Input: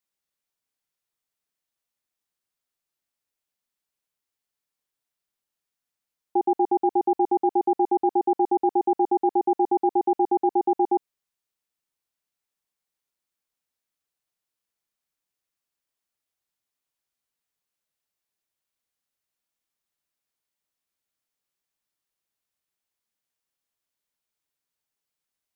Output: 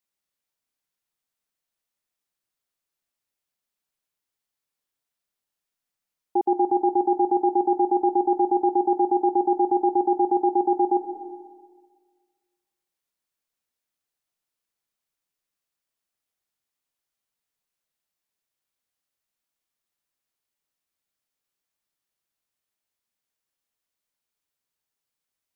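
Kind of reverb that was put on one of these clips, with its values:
comb and all-pass reverb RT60 1.6 s, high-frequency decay 0.55×, pre-delay 105 ms, DRR 9.5 dB

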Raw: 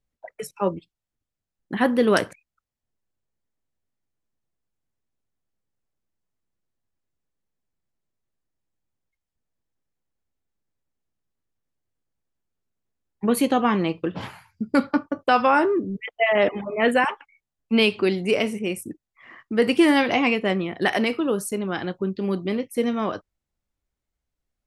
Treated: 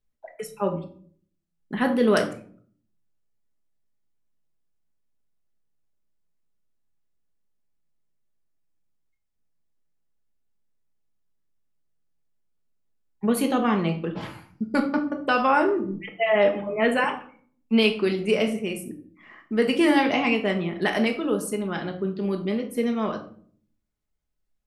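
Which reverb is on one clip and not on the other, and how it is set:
rectangular room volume 560 cubic metres, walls furnished, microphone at 1.4 metres
level −3.5 dB

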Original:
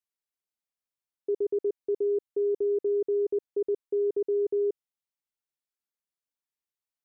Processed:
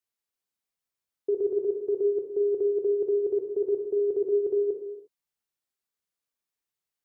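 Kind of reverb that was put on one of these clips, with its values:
reverb whose tail is shaped and stops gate 380 ms falling, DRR 2.5 dB
level +1.5 dB

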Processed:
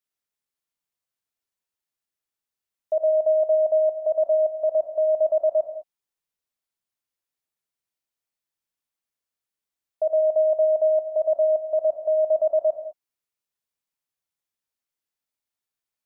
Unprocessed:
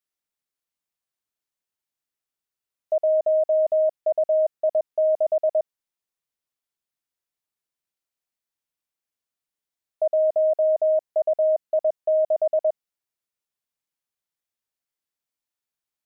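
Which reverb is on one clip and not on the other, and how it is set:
reverb whose tail is shaped and stops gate 230 ms flat, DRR 6 dB
level −1.5 dB

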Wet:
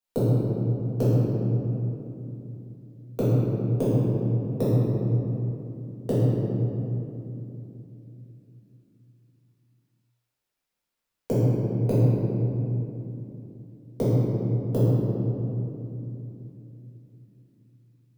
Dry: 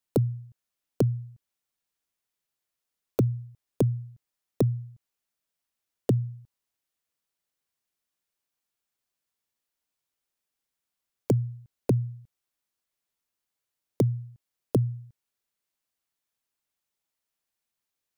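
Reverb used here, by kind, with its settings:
rectangular room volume 140 cubic metres, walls hard, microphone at 1.7 metres
level −7.5 dB

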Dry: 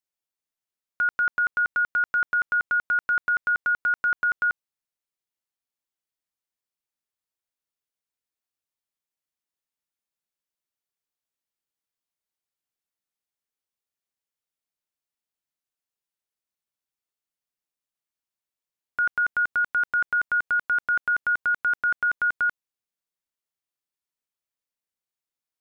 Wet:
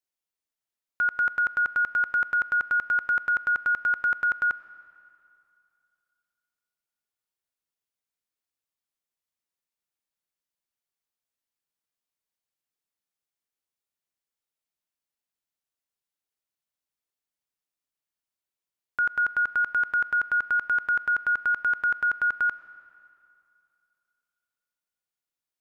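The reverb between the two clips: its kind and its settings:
comb and all-pass reverb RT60 2.6 s, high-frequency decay 0.85×, pre-delay 55 ms, DRR 16 dB
level −1 dB

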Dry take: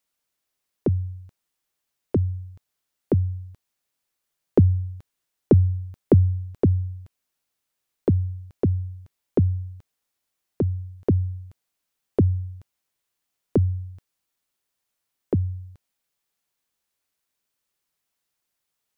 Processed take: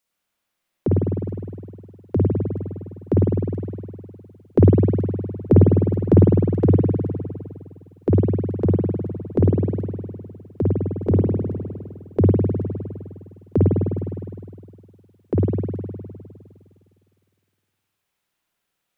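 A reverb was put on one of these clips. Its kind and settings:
spring reverb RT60 2.2 s, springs 51 ms, chirp 65 ms, DRR −5.5 dB

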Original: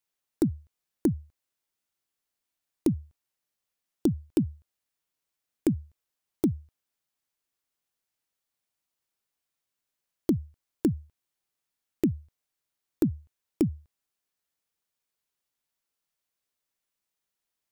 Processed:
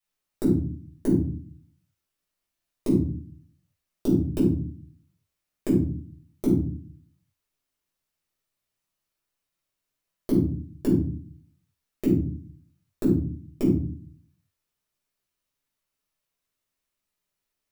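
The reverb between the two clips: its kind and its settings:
rectangular room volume 370 cubic metres, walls furnished, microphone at 6.1 metres
level −6.5 dB

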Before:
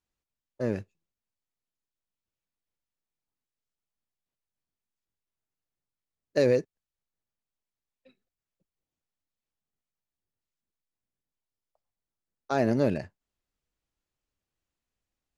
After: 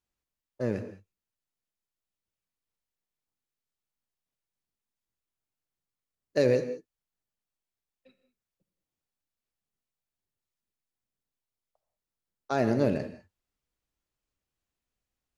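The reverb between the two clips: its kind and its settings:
reverb whose tail is shaped and stops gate 220 ms flat, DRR 9.5 dB
level −1 dB

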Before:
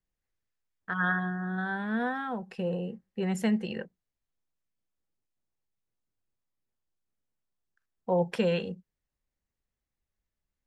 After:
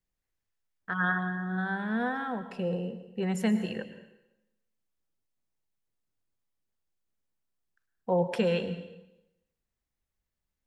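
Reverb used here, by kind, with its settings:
dense smooth reverb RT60 0.92 s, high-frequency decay 0.95×, pre-delay 95 ms, DRR 11 dB

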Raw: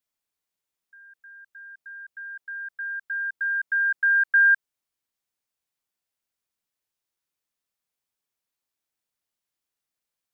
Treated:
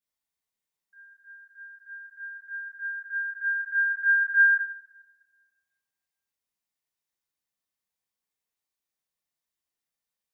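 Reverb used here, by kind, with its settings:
coupled-rooms reverb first 0.56 s, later 1.5 s, DRR −6.5 dB
level −10 dB

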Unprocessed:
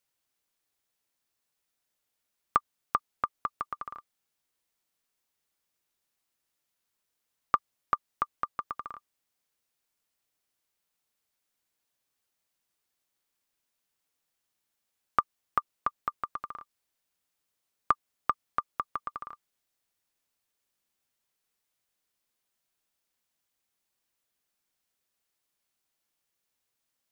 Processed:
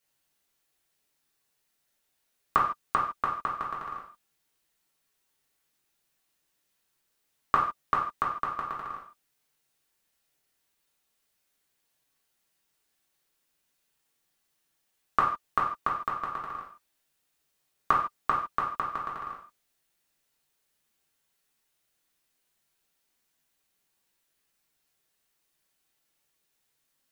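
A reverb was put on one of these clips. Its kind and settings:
reverb whose tail is shaped and stops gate 180 ms falling, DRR −4.5 dB

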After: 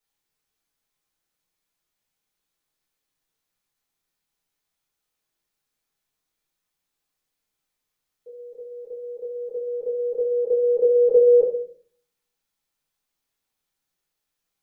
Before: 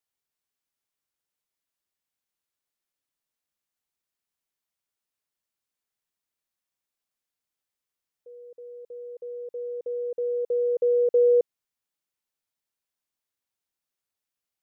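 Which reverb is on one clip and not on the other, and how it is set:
rectangular room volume 55 cubic metres, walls mixed, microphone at 1.4 metres

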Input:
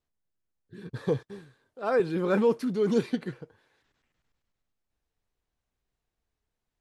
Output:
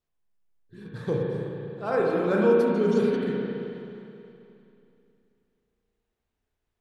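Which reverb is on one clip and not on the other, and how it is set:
spring reverb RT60 2.8 s, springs 34/53 ms, chirp 70 ms, DRR −3 dB
level −2 dB

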